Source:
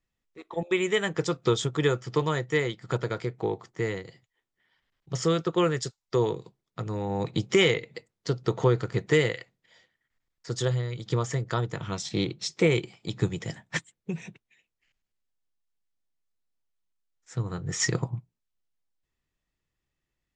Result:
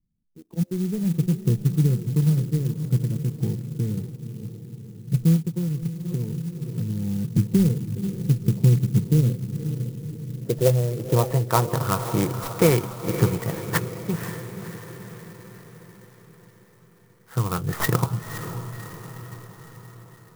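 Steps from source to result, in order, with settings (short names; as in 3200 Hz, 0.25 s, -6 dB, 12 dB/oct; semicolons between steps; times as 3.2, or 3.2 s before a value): tracing distortion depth 0.027 ms; dynamic EQ 380 Hz, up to -4 dB, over -37 dBFS, Q 1.5; low-pass sweep 190 Hz -> 1200 Hz, 9.05–11.89; bell 4100 Hz +14.5 dB 1.1 oct; diffused feedback echo 0.522 s, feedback 58%, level -9.5 dB; 5.36–7.37 compressor, threshold -29 dBFS, peak gain reduction 7 dB; clock jitter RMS 0.07 ms; gain +6 dB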